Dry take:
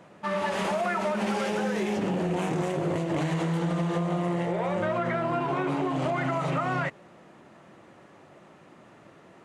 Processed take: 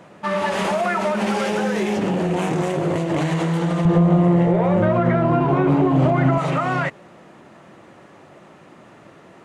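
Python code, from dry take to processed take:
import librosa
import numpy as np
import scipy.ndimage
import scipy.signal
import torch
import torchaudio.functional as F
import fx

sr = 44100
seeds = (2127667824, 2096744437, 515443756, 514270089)

y = fx.tilt_eq(x, sr, slope=-3.0, at=(3.85, 6.38))
y = y * 10.0 ** (6.5 / 20.0)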